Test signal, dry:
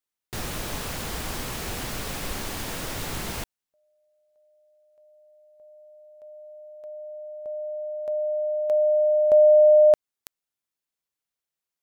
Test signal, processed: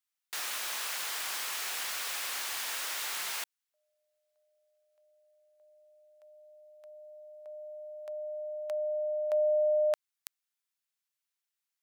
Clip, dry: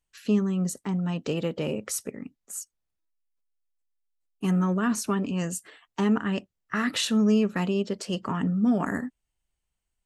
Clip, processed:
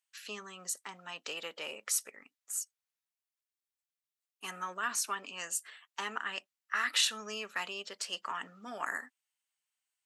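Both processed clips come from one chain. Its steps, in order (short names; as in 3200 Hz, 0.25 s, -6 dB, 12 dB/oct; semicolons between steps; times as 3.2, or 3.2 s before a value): HPF 1200 Hz 12 dB/oct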